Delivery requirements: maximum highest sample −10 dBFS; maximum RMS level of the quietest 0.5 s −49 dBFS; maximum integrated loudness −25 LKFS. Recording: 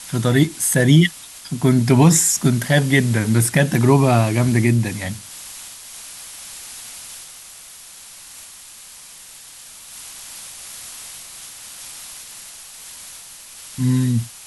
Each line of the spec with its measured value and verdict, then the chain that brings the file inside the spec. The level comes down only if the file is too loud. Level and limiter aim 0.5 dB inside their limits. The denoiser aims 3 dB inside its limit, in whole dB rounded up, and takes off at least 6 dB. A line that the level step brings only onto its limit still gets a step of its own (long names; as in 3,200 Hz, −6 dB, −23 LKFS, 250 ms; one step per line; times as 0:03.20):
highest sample −3.0 dBFS: out of spec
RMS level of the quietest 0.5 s −41 dBFS: out of spec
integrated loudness −16.5 LKFS: out of spec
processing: level −9 dB